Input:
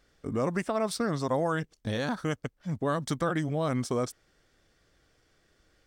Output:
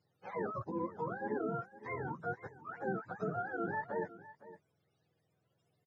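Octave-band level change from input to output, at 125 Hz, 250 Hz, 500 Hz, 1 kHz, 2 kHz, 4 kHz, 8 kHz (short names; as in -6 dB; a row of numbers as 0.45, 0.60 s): -13.5 dB, -11.0 dB, -9.0 dB, -5.5 dB, -5.5 dB, under -30 dB, under -35 dB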